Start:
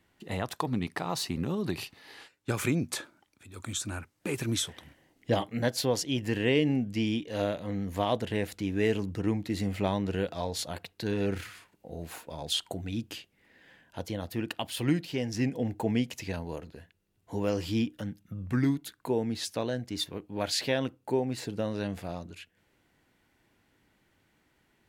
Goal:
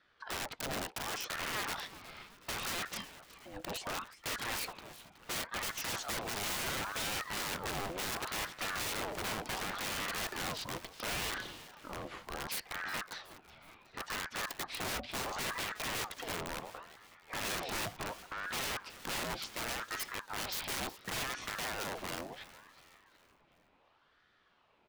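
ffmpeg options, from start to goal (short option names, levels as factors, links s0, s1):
-filter_complex "[0:a]acrossover=split=230[s0][s1];[s0]aeval=exprs='(mod(59.6*val(0)+1,2)-1)/59.6':c=same[s2];[s2][s1]amix=inputs=2:normalize=0,lowpass=3500,aeval=exprs='(mod(35.5*val(0)+1,2)-1)/35.5':c=same,asplit=5[s3][s4][s5][s6][s7];[s4]adelay=369,afreqshift=81,volume=0.158[s8];[s5]adelay=738,afreqshift=162,volume=0.0759[s9];[s6]adelay=1107,afreqshift=243,volume=0.0363[s10];[s7]adelay=1476,afreqshift=324,volume=0.0176[s11];[s3][s8][s9][s10][s11]amix=inputs=5:normalize=0,aeval=exprs='val(0)*sin(2*PI*1000*n/s+1000*0.6/0.7*sin(2*PI*0.7*n/s))':c=same,volume=1.26"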